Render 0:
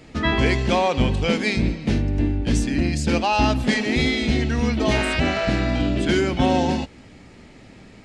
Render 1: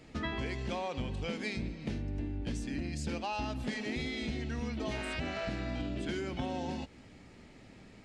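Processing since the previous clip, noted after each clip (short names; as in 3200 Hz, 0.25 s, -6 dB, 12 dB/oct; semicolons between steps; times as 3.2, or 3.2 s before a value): compressor, threshold -24 dBFS, peak gain reduction 10 dB; gain -9 dB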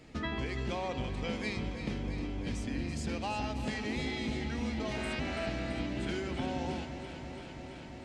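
echo with dull and thin repeats by turns 0.167 s, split 900 Hz, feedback 90%, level -9 dB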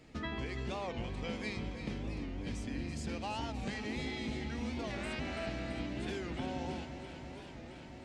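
record warp 45 rpm, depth 160 cents; gain -3.5 dB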